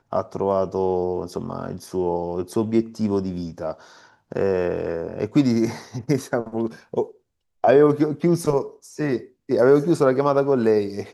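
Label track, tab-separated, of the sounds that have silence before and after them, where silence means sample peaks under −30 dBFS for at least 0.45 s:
4.320000	7.050000	sound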